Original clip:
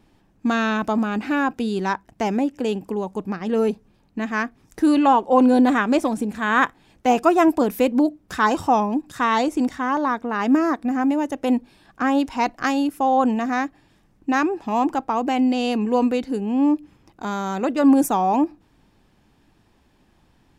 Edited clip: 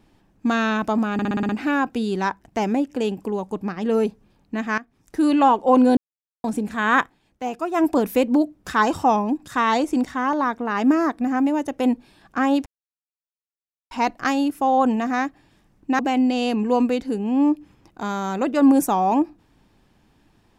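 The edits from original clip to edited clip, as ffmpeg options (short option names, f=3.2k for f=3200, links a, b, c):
-filter_complex "[0:a]asplit=14[a][b][c][d][e][f][g][h][i][j][k][l][m][n];[a]atrim=end=1.192[o];[b]atrim=start=1.128:end=1.192[p];[c]atrim=start=1.128:end=1.192[q];[d]atrim=start=1.128:end=1.192[r];[e]atrim=start=1.128:end=1.192[s];[f]atrim=start=1.128:end=1.192[t];[g]atrim=start=1.128:end=4.42,asetpts=PTS-STARTPTS,afade=t=out:st=3.288:d=0.004:c=hsin:silence=0.177828[u];[h]atrim=start=4.42:end=5.61,asetpts=PTS-STARTPTS,afade=t=in:d=0.61:silence=0.177828,afade=t=out:st=1.186:d=0.004:c=hsin[v];[i]atrim=start=5.61:end=6.08,asetpts=PTS-STARTPTS,volume=0[w];[j]atrim=start=6.08:end=6.83,asetpts=PTS-STARTPTS,afade=t=in:d=0.004:c=hsin,afade=t=out:st=0.57:d=0.18:silence=0.316228[x];[k]atrim=start=6.83:end=7.35,asetpts=PTS-STARTPTS,volume=-10dB[y];[l]atrim=start=7.35:end=12.3,asetpts=PTS-STARTPTS,afade=t=in:d=0.18:silence=0.316228,afade=t=out:st=4.946:d=0.004:c=hsin,apad=pad_dur=1.25[z];[m]atrim=start=12.3:end=14.382,asetpts=PTS-STARTPTS,afade=t=in:d=0.004:c=hsin[aa];[n]atrim=start=15.208[ab];[o][p]acrossfade=d=0.004:c1=hsin:c2=hsin[ac];[ac][q]acrossfade=d=0.004:c1=hsin:c2=hsin[ad];[ad][r]acrossfade=d=0.004:c1=hsin:c2=hsin[ae];[ae][s]acrossfade=d=0.004:c1=hsin:c2=hsin[af];[af][t]acrossfade=d=0.004:c1=hsin:c2=hsin[ag];[u][v][w][x][y][z][aa]concat=n=7:v=0:a=1[ah];[ag][ah]acrossfade=d=0.004:c1=hsin:c2=hsin[ai];[ai][ab]acrossfade=d=0.004:c1=hsin:c2=hsin"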